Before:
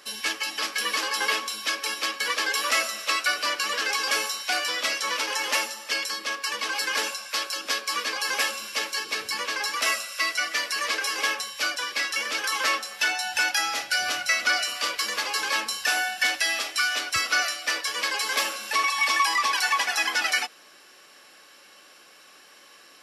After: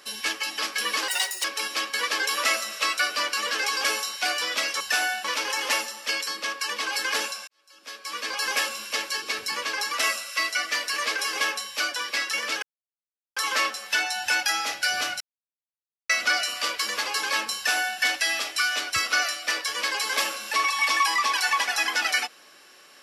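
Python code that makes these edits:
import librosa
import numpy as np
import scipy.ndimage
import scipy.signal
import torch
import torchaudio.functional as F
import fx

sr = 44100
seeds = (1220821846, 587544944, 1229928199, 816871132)

y = fx.edit(x, sr, fx.speed_span(start_s=1.08, length_s=0.63, speed=1.73),
    fx.fade_in_span(start_s=7.3, length_s=0.9, curve='qua'),
    fx.insert_silence(at_s=12.45, length_s=0.74),
    fx.insert_silence(at_s=14.29, length_s=0.89),
    fx.duplicate(start_s=15.75, length_s=0.44, to_s=5.07), tone=tone)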